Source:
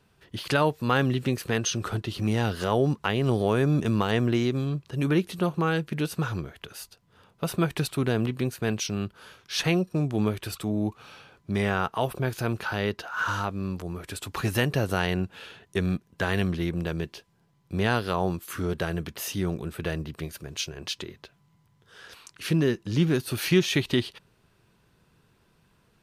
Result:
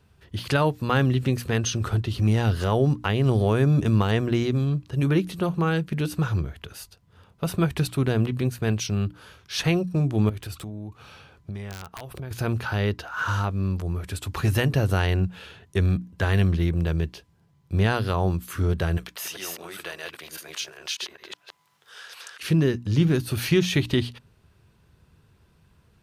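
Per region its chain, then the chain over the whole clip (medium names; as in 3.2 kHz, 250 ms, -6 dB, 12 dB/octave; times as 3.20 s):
10.29–12.31 s: compression 8:1, threshold -35 dBFS + integer overflow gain 28 dB
18.97–22.43 s: chunks repeated in reverse 200 ms, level -0.5 dB + high-pass 720 Hz + three bands compressed up and down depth 40%
whole clip: peaking EQ 70 Hz +13.5 dB 1.6 oct; hum notches 60/120/180/240/300 Hz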